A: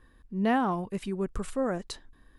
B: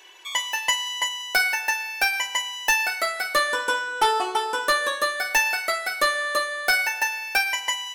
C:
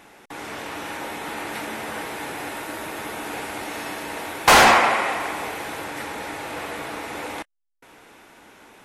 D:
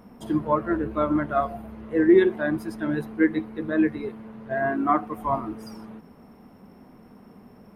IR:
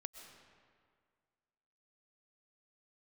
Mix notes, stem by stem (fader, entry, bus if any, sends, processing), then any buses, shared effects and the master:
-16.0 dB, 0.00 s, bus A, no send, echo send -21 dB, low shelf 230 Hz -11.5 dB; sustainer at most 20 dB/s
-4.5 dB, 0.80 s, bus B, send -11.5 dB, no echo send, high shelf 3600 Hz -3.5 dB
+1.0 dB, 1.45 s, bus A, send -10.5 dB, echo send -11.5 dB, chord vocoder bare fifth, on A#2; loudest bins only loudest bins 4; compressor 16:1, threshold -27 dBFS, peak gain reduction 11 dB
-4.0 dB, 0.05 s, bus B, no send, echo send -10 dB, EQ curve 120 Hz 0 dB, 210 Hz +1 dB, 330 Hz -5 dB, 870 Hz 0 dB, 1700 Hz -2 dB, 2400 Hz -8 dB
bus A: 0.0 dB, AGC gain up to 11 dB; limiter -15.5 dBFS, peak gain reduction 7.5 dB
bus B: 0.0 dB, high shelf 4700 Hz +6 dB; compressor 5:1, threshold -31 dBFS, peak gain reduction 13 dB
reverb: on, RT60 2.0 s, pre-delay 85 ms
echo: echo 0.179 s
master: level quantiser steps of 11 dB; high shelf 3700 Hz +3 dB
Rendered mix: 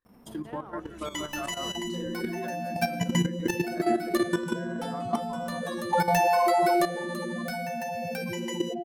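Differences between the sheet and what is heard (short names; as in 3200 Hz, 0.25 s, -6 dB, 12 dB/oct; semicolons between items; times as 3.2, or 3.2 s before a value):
stem A -16.0 dB -> -23.5 dB; stem D: missing EQ curve 120 Hz 0 dB, 210 Hz +1 dB, 330 Hz -5 dB, 870 Hz 0 dB, 1700 Hz -2 dB, 2400 Hz -8 dB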